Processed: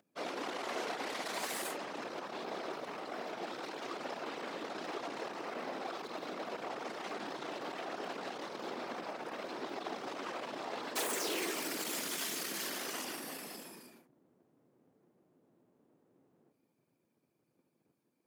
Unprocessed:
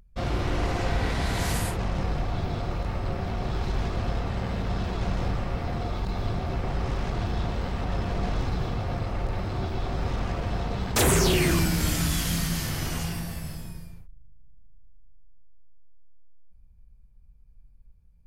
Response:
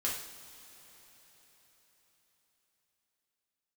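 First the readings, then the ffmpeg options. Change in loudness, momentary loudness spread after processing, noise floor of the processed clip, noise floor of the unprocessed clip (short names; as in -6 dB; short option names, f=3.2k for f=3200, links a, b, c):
-11.5 dB, 7 LU, -79 dBFS, -53 dBFS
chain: -af "asoftclip=type=tanh:threshold=-33dB,afftfilt=real='hypot(re,im)*cos(2*PI*random(0))':imag='hypot(re,im)*sin(2*PI*random(1))':win_size=512:overlap=0.75,highpass=f=300:w=0.5412,highpass=f=300:w=1.3066,volume=6.5dB"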